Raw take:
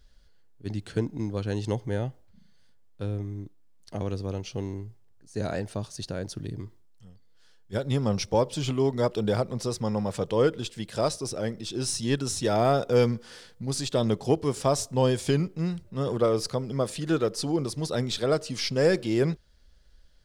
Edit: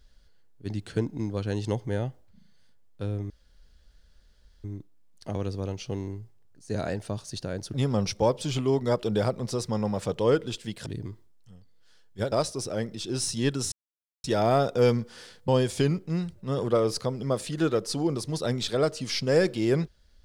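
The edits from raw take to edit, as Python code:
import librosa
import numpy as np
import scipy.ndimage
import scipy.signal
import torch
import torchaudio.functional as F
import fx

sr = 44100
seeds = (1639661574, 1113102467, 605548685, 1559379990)

y = fx.edit(x, sr, fx.insert_room_tone(at_s=3.3, length_s=1.34),
    fx.move(start_s=6.4, length_s=1.46, to_s=10.98),
    fx.insert_silence(at_s=12.38, length_s=0.52),
    fx.cut(start_s=13.62, length_s=1.35), tone=tone)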